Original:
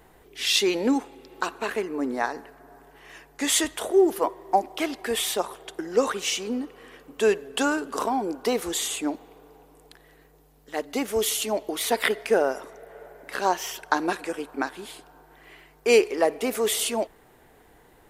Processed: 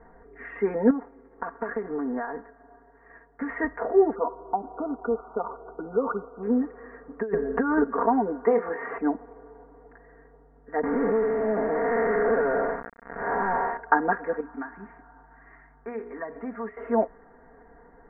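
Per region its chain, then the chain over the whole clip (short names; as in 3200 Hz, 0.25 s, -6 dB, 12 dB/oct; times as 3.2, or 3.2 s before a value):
0.9–3.49 G.711 law mismatch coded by A + compressor 10:1, threshold -28 dBFS + Doppler distortion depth 0.27 ms
4.15–6.43 compressor 3:1, threshold -26 dBFS + brick-wall FIR low-pass 1500 Hz
7.21–7.84 low shelf 340 Hz +7 dB + negative-ratio compressor -24 dBFS, ratio -0.5
8.46–8.98 HPF 320 Hz 6 dB/oct + doubler 26 ms -7.5 dB + three-band squash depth 100%
10.83–13.77 time blur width 0.31 s + HPF 160 Hz 24 dB/oct + companded quantiser 2-bit
14.4–16.77 bell 490 Hz -12.5 dB 0.87 oct + notches 60/120/180/240/300/360/420/480 Hz + compressor 2.5:1, threshold -36 dBFS
whole clip: steep low-pass 1900 Hz 72 dB/oct; comb 4.3 ms, depth 97%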